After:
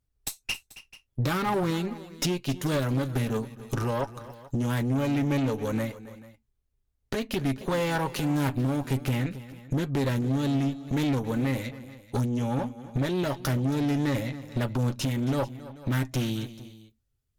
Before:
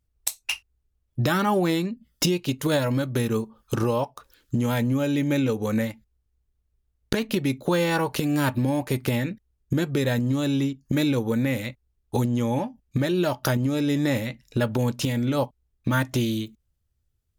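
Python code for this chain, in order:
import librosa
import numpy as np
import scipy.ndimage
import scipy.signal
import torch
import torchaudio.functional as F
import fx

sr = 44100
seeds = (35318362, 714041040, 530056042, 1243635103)

y = x + 0.36 * np.pad(x, (int(7.4 * sr / 1000.0), 0))[:len(x)]
y = fx.tube_stage(y, sr, drive_db=21.0, bias=0.6)
y = fx.echo_multitap(y, sr, ms=(272, 437), db=(-16.5, -19.5))
y = fx.doppler_dist(y, sr, depth_ms=0.14)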